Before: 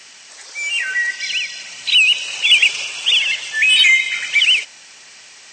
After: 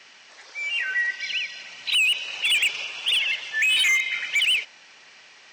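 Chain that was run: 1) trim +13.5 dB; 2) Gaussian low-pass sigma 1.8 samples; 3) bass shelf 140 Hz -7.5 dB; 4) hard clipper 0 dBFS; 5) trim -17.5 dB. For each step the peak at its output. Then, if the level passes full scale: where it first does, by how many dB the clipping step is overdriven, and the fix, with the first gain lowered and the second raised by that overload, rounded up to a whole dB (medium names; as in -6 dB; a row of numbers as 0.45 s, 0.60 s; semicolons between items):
+11.5 dBFS, +9.0 dBFS, +9.0 dBFS, 0.0 dBFS, -17.5 dBFS; step 1, 9.0 dB; step 1 +4.5 dB, step 5 -8.5 dB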